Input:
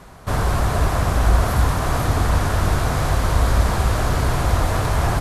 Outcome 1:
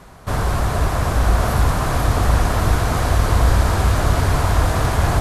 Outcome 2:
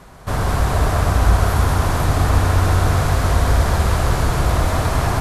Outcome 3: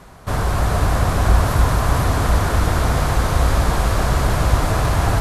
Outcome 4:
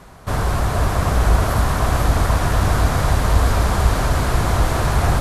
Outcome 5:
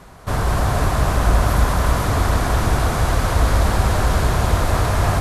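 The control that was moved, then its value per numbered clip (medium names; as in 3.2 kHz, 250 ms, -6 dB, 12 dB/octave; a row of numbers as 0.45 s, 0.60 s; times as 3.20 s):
multi-head delay, time: 371 ms, 66 ms, 144 ms, 248 ms, 97 ms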